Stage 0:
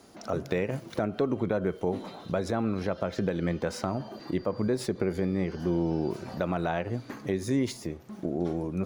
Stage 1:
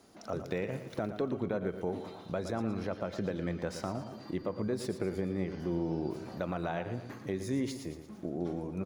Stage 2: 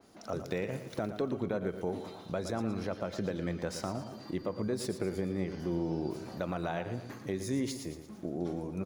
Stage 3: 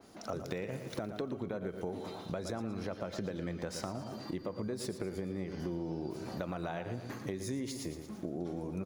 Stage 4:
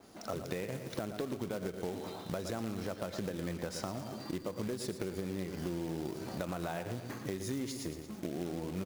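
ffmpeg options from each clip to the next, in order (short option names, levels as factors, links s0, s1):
-af "aecho=1:1:115|230|345|460|575:0.299|0.146|0.0717|0.0351|0.0172,volume=0.501"
-af "adynamicequalizer=threshold=0.00158:dfrequency=3900:dqfactor=0.7:tfrequency=3900:tqfactor=0.7:attack=5:release=100:ratio=0.375:range=2.5:mode=boostabove:tftype=highshelf"
-af "acompressor=threshold=0.0126:ratio=4,volume=1.41"
-af "acrusher=bits=3:mode=log:mix=0:aa=0.000001"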